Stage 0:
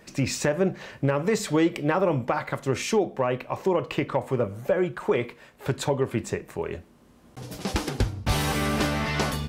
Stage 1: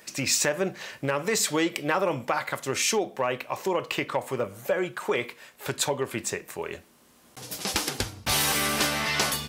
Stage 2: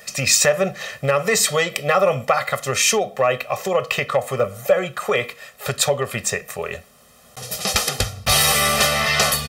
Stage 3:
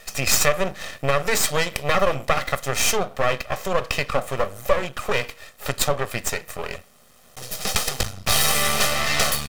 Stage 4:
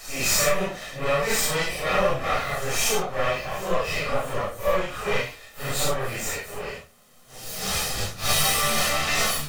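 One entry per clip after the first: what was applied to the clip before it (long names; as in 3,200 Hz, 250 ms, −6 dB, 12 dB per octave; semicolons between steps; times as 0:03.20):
spectral tilt +3 dB per octave
comb filter 1.6 ms, depth 100%; level +5 dB
half-wave rectification; level +1 dB
random phases in long frames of 200 ms; level −2 dB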